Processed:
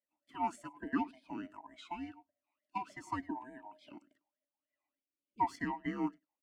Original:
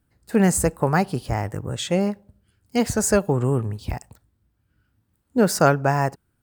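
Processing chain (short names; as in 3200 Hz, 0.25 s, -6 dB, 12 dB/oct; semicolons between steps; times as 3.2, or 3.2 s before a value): band-swap scrambler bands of 500 Hz; spectral delete 4.95–5.41, 590–2100 Hz; echo 0.1 s -22 dB; tremolo saw up 1.8 Hz, depth 55%; vowel sweep i-u 3.4 Hz; gain -1 dB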